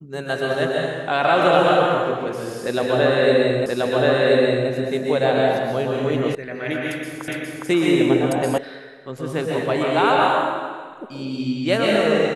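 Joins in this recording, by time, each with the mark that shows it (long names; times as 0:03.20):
0:03.66: the same again, the last 1.03 s
0:06.35: cut off before it has died away
0:07.28: the same again, the last 0.41 s
0:08.58: cut off before it has died away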